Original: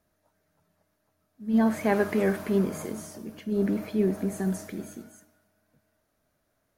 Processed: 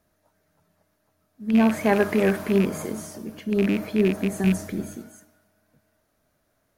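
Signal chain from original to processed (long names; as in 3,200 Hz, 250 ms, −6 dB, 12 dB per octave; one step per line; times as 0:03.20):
loose part that buzzes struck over −27 dBFS, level −24 dBFS
0:04.44–0:04.96: low-shelf EQ 150 Hz +9.5 dB
level +4 dB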